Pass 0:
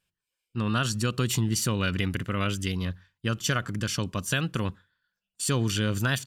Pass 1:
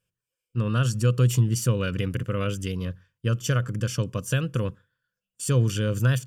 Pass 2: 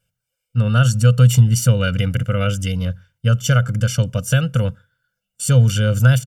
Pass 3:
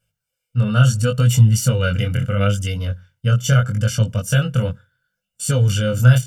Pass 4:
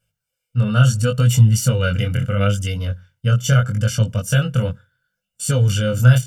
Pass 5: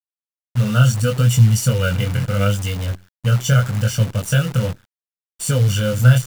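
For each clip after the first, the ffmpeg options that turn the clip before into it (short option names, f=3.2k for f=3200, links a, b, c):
-af "equalizer=f=125:t=o:w=0.33:g=12,equalizer=f=500:t=o:w=0.33:g=10,equalizer=f=800:t=o:w=0.33:g=-11,equalizer=f=2k:t=o:w=0.33:g=-6,equalizer=f=4k:t=o:w=0.33:g=-11,volume=-1.5dB"
-af "aecho=1:1:1.4:0.99,volume=4.5dB"
-af "flanger=delay=18.5:depth=5.4:speed=0.74,volume=2.5dB"
-af anull
-af "acrusher=bits=6:dc=4:mix=0:aa=0.000001"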